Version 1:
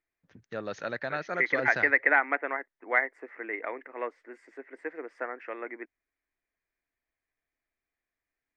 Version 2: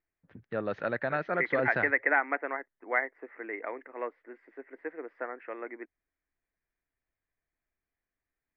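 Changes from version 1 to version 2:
first voice +4.5 dB
master: add high-frequency loss of the air 420 metres

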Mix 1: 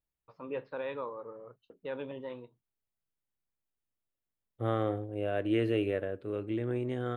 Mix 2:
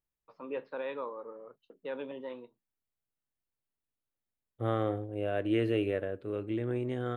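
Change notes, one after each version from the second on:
first voice: add high-pass filter 180 Hz 24 dB per octave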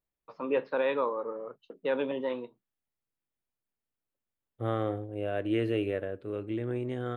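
first voice +9.0 dB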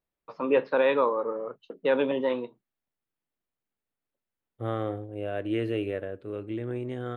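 first voice +5.5 dB

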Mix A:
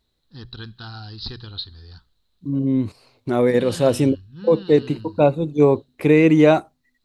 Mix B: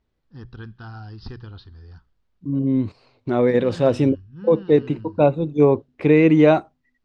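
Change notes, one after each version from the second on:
first voice: remove low-pass with resonance 4,000 Hz, resonance Q 9.6
master: add high-frequency loss of the air 140 metres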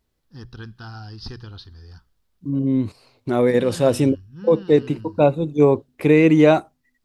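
first voice: remove high-frequency loss of the air 87 metres
master: remove high-frequency loss of the air 140 metres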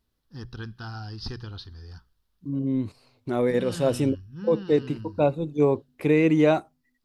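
second voice −6.0 dB

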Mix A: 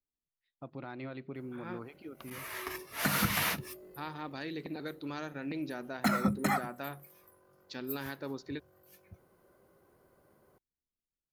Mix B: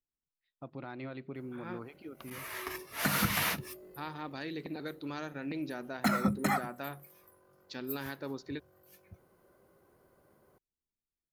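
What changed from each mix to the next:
nothing changed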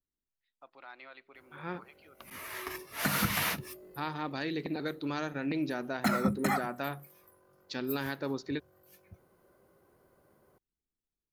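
first voice: add high-pass filter 920 Hz 12 dB per octave
second voice +5.0 dB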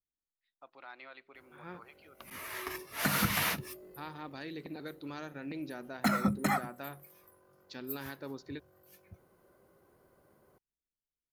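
second voice −8.0 dB

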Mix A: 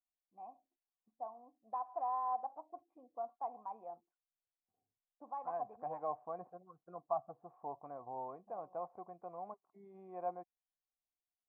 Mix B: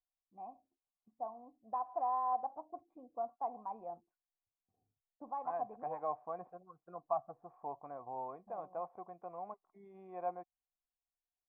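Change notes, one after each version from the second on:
first voice: add spectral tilt −3.5 dB per octave
master: add high-shelf EQ 2,200 Hz +11.5 dB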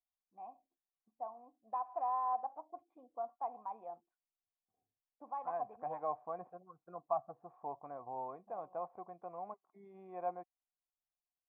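first voice: add spectral tilt +3.5 dB per octave

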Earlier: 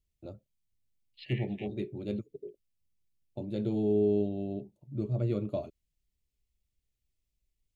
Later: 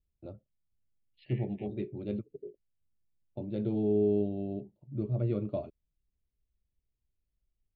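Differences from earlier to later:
second voice −7.0 dB
master: add high-frequency loss of the air 250 metres

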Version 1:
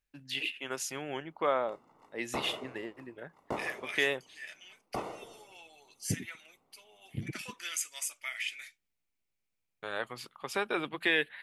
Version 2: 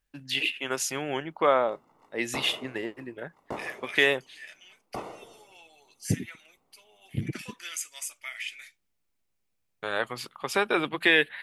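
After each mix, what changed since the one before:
first voice +7.0 dB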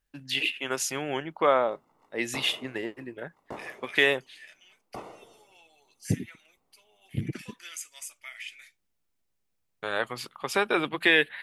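second voice −4.5 dB
background −4.0 dB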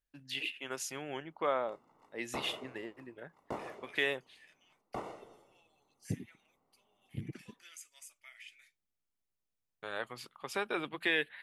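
first voice −10.0 dB
second voice −12.0 dB

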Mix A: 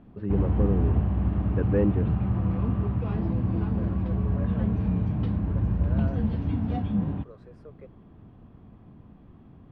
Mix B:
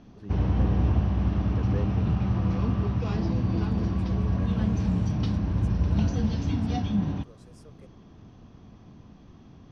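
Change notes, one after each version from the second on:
first voice −12.0 dB
second voice −8.0 dB
master: remove high-frequency loss of the air 490 metres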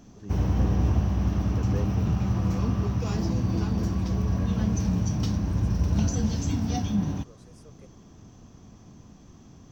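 background: remove low-pass filter 4,300 Hz 24 dB per octave

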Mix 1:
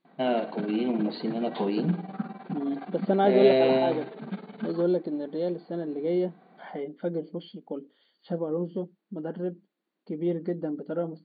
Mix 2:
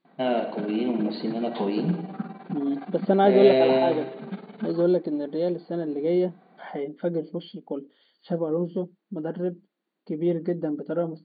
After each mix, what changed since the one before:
first voice: send +8.5 dB
second voice +3.5 dB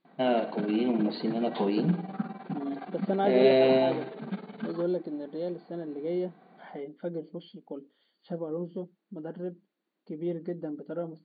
first voice: send −6.5 dB
second voice −8.0 dB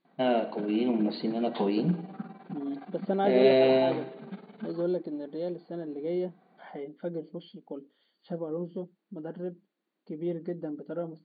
background −6.5 dB

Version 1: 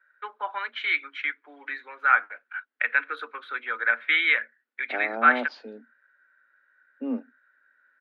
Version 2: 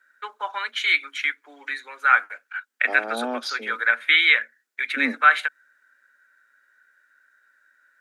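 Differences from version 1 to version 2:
second voice: entry −2.05 s
master: remove high-frequency loss of the air 400 metres

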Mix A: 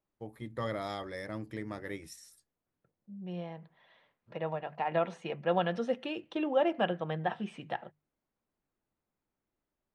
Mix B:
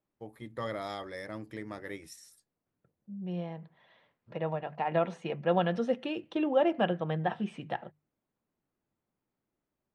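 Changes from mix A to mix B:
first voice: add low-shelf EQ 280 Hz −10 dB
master: add low-shelf EQ 410 Hz +5 dB

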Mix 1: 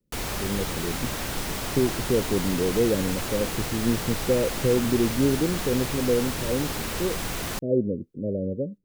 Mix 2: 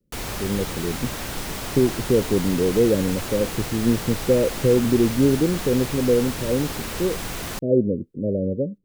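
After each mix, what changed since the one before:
speech +4.5 dB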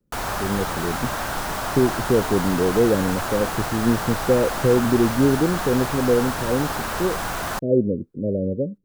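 background: add flat-topped bell 1,000 Hz +9.5 dB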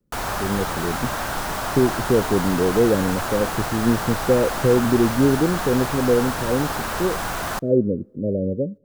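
reverb: on, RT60 1.2 s

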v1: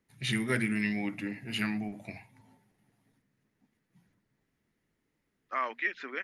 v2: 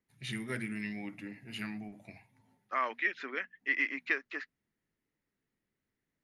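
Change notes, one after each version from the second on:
first voice −8.0 dB
second voice: entry −2.80 s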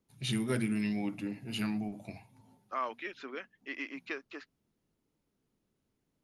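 first voice +7.5 dB
master: add parametric band 1,900 Hz −13 dB 0.64 octaves

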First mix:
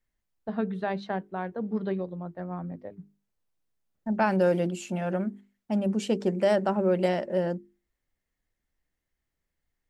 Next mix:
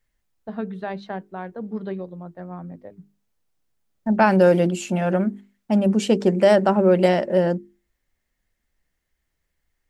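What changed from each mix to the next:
second voice +8.0 dB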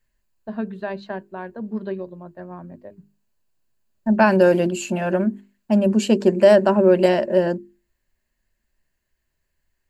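master: add EQ curve with evenly spaced ripples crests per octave 1.4, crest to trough 7 dB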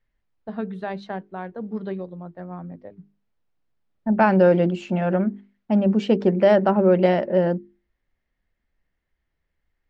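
second voice: add high-frequency loss of the air 220 metres
master: remove EQ curve with evenly spaced ripples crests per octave 1.4, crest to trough 7 dB

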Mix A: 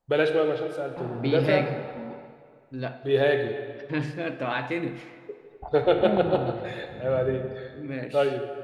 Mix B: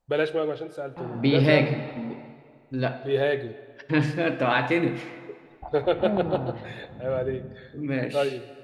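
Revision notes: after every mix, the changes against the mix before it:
first voice: send −11.0 dB
second voice +6.0 dB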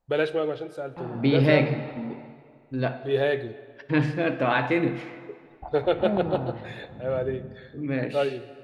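second voice: add high-shelf EQ 4,900 Hz −9 dB

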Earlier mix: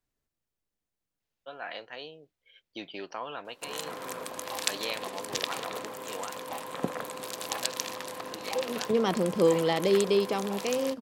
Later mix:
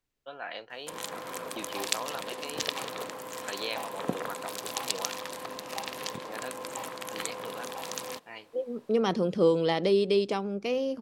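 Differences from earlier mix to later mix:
first voice: entry −1.20 s
background: entry −2.75 s

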